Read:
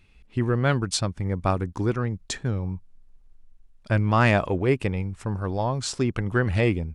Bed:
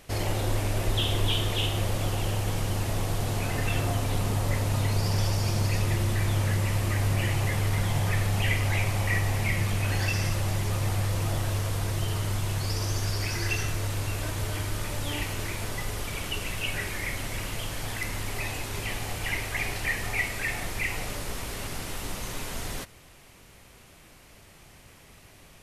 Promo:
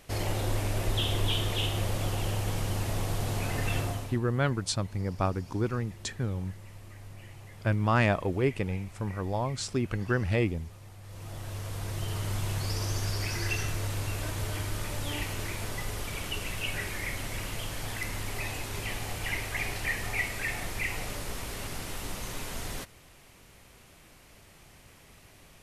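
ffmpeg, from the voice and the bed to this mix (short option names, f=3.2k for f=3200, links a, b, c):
-filter_complex "[0:a]adelay=3750,volume=-5dB[a];[1:a]volume=16.5dB,afade=t=out:st=3.77:d=0.42:silence=0.112202,afade=t=in:st=11.01:d=1.42:silence=0.112202[b];[a][b]amix=inputs=2:normalize=0"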